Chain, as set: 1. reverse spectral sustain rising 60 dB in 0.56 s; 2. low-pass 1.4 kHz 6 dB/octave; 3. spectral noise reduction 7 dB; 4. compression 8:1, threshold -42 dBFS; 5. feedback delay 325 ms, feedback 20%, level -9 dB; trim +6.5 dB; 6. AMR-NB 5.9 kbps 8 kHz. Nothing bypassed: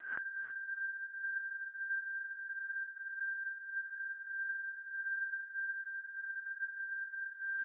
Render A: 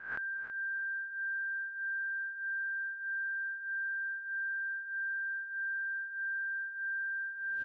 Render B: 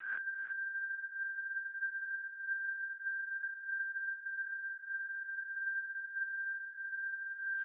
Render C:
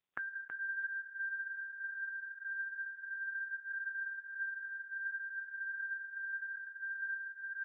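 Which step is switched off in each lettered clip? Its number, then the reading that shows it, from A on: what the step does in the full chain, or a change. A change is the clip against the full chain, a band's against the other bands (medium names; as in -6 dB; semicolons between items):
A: 6, crest factor change -3.0 dB; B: 2, crest factor change -4.0 dB; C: 1, crest factor change +4.0 dB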